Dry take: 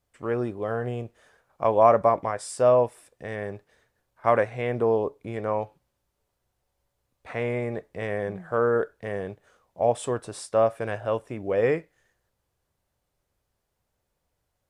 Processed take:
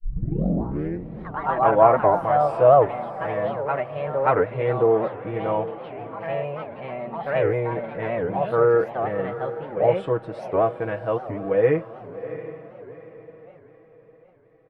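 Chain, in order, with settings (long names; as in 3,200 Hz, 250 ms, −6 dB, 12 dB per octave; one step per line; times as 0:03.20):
turntable start at the beginning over 1.30 s
comb filter 6.2 ms, depth 81%
feedback delay with all-pass diffusion 712 ms, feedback 42%, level −13 dB
delay with pitch and tempo change per echo 97 ms, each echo +3 semitones, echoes 3, each echo −6 dB
high-frequency loss of the air 430 metres
wow of a warped record 78 rpm, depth 250 cents
level +2 dB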